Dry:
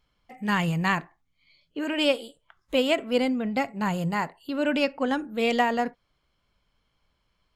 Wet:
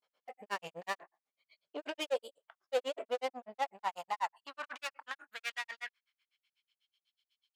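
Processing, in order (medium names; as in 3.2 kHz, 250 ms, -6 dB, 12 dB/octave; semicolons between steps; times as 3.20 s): valve stage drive 29 dB, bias 0.45; granulator 91 ms, grains 8.1 per s, spray 25 ms, pitch spread up and down by 0 st; high-pass sweep 550 Hz -> 3.2 kHz, 3.06–7.00 s; trim -1.5 dB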